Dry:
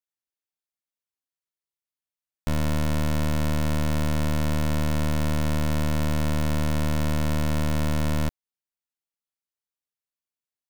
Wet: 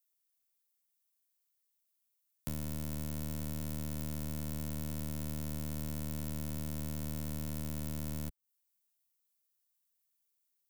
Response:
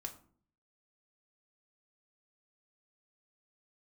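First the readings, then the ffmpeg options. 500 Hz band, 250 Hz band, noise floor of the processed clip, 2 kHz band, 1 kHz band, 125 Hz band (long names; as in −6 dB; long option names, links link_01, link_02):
−17.5 dB, −13.5 dB, −80 dBFS, −19.5 dB, −20.0 dB, −14.5 dB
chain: -filter_complex "[0:a]acrusher=bits=2:mode=log:mix=0:aa=0.000001,aemphasis=mode=production:type=75kf,acrossover=split=84|480|6100[link_01][link_02][link_03][link_04];[link_01]acompressor=threshold=-40dB:ratio=4[link_05];[link_02]acompressor=threshold=-34dB:ratio=4[link_06];[link_03]acompressor=threshold=-49dB:ratio=4[link_07];[link_04]acompressor=threshold=-38dB:ratio=4[link_08];[link_05][link_06][link_07][link_08]amix=inputs=4:normalize=0,volume=-4.5dB"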